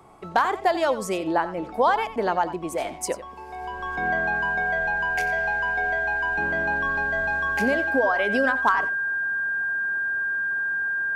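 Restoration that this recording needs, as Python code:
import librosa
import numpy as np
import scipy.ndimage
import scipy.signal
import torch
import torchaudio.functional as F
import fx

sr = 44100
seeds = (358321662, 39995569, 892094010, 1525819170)

y = fx.fix_declip(x, sr, threshold_db=-10.0)
y = fx.notch(y, sr, hz=1600.0, q=30.0)
y = fx.fix_echo_inverse(y, sr, delay_ms=90, level_db=-14.0)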